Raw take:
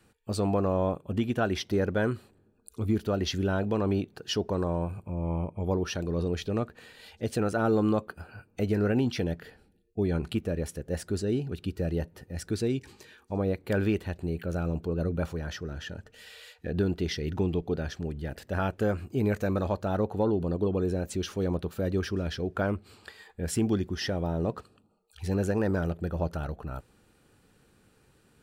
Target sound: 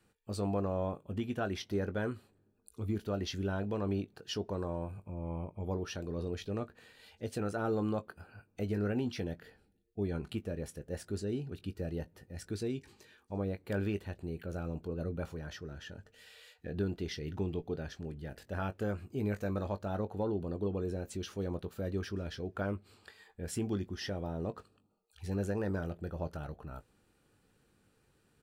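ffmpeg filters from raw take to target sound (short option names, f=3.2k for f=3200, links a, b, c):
-filter_complex "[0:a]asplit=2[a][b];[b]adelay=20,volume=-11.5dB[c];[a][c]amix=inputs=2:normalize=0,volume=-8dB"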